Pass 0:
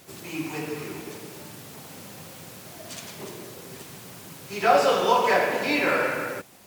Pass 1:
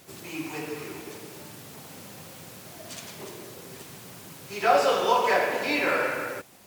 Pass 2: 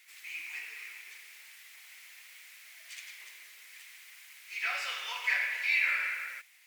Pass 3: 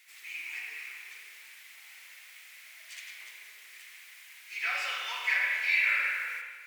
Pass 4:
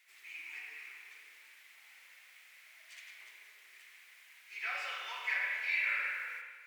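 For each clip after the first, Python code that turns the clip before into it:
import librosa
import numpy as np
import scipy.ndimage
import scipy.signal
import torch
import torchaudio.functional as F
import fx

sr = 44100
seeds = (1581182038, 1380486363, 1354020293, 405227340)

y1 = fx.dynamic_eq(x, sr, hz=180.0, q=1.3, threshold_db=-45.0, ratio=4.0, max_db=-5)
y1 = F.gain(torch.from_numpy(y1), -1.5).numpy()
y2 = fx.highpass_res(y1, sr, hz=2100.0, q=4.6)
y2 = F.gain(torch.from_numpy(y2), -9.0).numpy()
y3 = fx.rev_spring(y2, sr, rt60_s=1.4, pass_ms=(33, 39), chirp_ms=30, drr_db=1.5)
y4 = fx.high_shelf(y3, sr, hz=2600.0, db=-7.5)
y4 = F.gain(torch.from_numpy(y4), -3.5).numpy()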